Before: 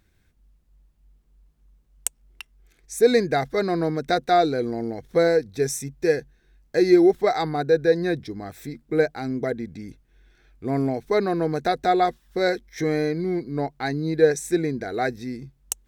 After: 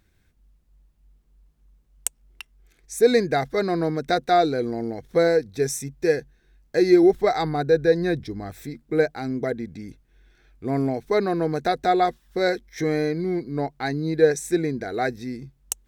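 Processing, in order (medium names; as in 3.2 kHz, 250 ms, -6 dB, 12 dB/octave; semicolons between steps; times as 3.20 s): 7.03–8.62 s: bass shelf 77 Hz +11.5 dB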